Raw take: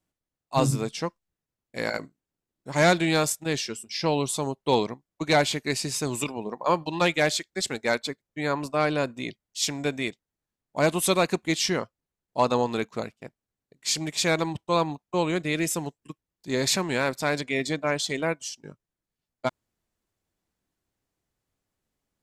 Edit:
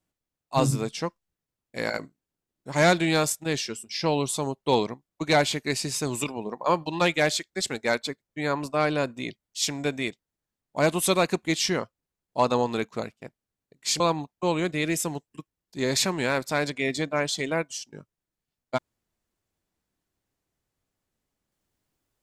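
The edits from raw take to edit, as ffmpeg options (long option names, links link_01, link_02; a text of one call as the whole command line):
ffmpeg -i in.wav -filter_complex "[0:a]asplit=2[link_01][link_02];[link_01]atrim=end=14.002[link_03];[link_02]atrim=start=14.708[link_04];[link_03][link_04]acrossfade=duration=0.004:curve1=hsin:curve2=hsin" out.wav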